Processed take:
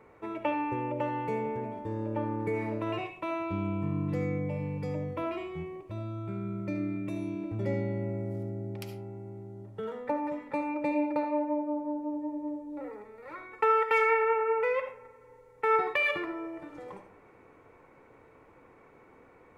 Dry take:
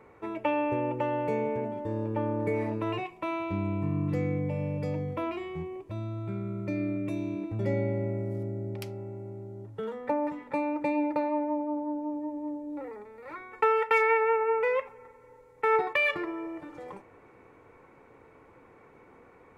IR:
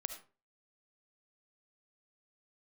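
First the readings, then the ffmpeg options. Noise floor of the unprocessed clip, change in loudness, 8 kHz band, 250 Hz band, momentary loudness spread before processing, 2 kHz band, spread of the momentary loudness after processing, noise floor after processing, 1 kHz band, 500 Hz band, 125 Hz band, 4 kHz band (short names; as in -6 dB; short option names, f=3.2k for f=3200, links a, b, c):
-56 dBFS, -1.5 dB, n/a, -1.5 dB, 14 LU, -1.5 dB, 16 LU, -58 dBFS, -0.5 dB, -2.0 dB, -2.5 dB, -1.0 dB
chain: -filter_complex "[1:a]atrim=start_sample=2205[a];[0:a][a]afir=irnorm=-1:irlink=0"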